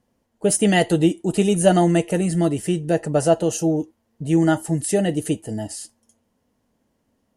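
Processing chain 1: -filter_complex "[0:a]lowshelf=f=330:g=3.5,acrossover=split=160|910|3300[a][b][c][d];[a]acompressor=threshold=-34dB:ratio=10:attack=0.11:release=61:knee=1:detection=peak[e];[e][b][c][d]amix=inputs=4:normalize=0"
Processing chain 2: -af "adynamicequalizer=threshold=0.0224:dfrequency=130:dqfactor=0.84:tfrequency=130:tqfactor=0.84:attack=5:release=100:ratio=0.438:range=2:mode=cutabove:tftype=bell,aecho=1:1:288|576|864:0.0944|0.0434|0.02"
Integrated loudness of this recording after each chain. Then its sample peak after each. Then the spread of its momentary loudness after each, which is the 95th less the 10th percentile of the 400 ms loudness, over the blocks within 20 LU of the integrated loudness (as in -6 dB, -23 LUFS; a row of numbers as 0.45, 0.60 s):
-19.5, -21.0 LUFS; -2.5, -3.5 dBFS; 11, 13 LU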